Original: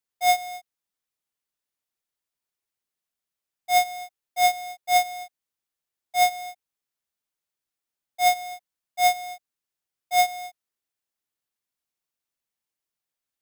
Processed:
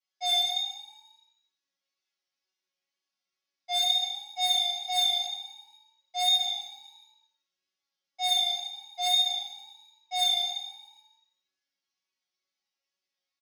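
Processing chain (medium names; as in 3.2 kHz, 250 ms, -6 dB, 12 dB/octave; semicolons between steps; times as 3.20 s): Chebyshev band-pass 110–5800 Hz, order 4; treble shelf 2.3 kHz +9 dB; in parallel at +1 dB: peak limiter -22.5 dBFS, peak gain reduction 16.5 dB; on the sum: chord resonator F#3 fifth, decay 0.46 s; vibrato 2.1 Hz 27 cents; overload inside the chain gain 31.5 dB; on a send: frequency-shifting echo 124 ms, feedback 57%, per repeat +30 Hz, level -14.5 dB; on the sum: gated-style reverb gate 230 ms falling, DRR -1 dB; trim +6.5 dB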